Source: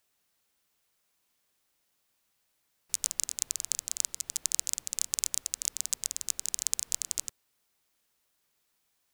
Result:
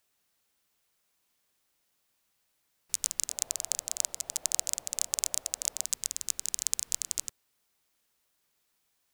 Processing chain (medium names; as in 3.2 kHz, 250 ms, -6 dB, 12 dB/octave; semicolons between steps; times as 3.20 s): 3.29–5.85 s: peaking EQ 650 Hz +14.5 dB 1.1 oct